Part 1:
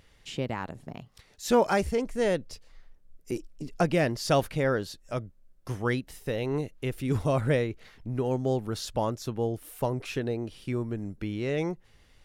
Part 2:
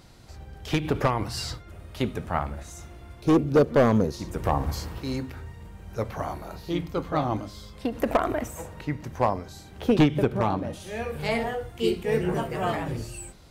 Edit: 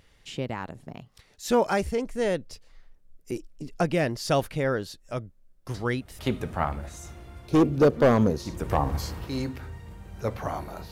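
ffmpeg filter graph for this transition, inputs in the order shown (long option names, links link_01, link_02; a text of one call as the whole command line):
ffmpeg -i cue0.wav -i cue1.wav -filter_complex "[1:a]asplit=2[link_01][link_02];[0:a]apad=whole_dur=10.91,atrim=end=10.91,atrim=end=6.192[link_03];[link_02]atrim=start=1.928:end=6.65[link_04];[link_01]atrim=start=1.48:end=1.93,asetpts=PTS-STARTPTS,volume=-9dB,afade=type=in:duration=0.004:curve=hsin,afade=type=out:start_time=0.446:duration=0.004:curve=hsin,adelay=5740[link_05];[link_03][link_04]acrossfade=duration=0.004:curve1=hsin:curve2=hsin[link_06];[link_06][link_05]amix=inputs=2:normalize=0" out.wav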